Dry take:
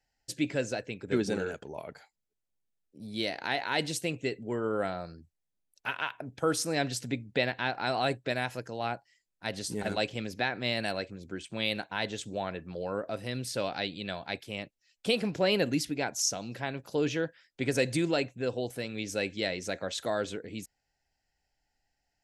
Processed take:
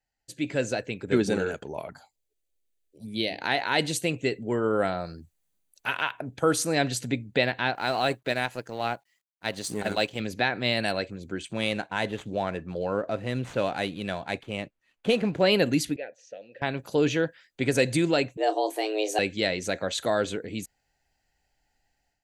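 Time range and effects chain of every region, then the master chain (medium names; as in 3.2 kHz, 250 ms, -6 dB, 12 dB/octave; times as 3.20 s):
1.87–3.41 s: hum notches 50/100/150/200/250/300 Hz + touch-sensitive phaser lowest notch 170 Hz, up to 1.3 kHz, full sweep at -36.5 dBFS
5.05–6.04 s: treble shelf 5.1 kHz +6 dB + transient shaper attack -2 dB, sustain +2 dB
7.75–10.20 s: companding laws mixed up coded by A + bass shelf 140 Hz -5.5 dB
11.53–15.40 s: median filter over 9 samples + distance through air 59 m
15.96–16.62 s: vowel filter e + distance through air 85 m
18.37–19.19 s: bass shelf 210 Hz +5 dB + frequency shift +210 Hz + doubling 28 ms -10 dB
whole clip: band-stop 5.3 kHz, Q 7.8; level rider gain up to 12 dB; trim -6 dB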